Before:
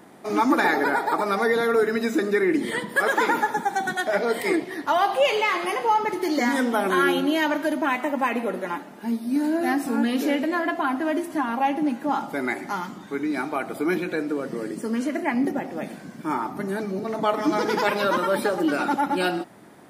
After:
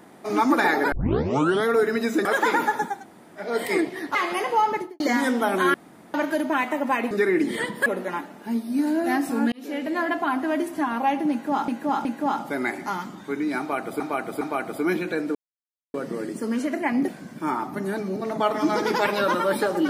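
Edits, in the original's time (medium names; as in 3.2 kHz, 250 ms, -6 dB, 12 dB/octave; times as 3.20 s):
0.92 s: tape start 0.75 s
2.25–3.00 s: move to 8.43 s
3.68–4.22 s: room tone, crossfade 0.24 s
4.90–5.47 s: delete
6.03–6.32 s: studio fade out
7.06–7.46 s: room tone
10.09–10.59 s: fade in linear
11.88–12.25 s: loop, 3 plays
13.42–13.83 s: loop, 3 plays
14.36 s: insert silence 0.59 s
15.50–15.91 s: delete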